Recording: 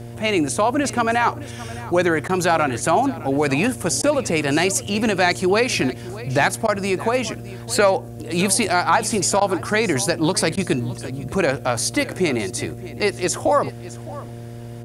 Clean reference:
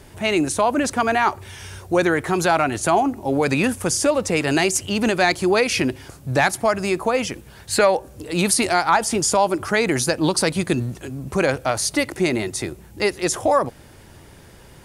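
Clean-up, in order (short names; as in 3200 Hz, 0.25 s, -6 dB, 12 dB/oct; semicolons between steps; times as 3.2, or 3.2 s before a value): de-hum 117.6 Hz, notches 6; interpolate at 2.28/4.02/6.67/9.4/10.56, 11 ms; inverse comb 0.613 s -17.5 dB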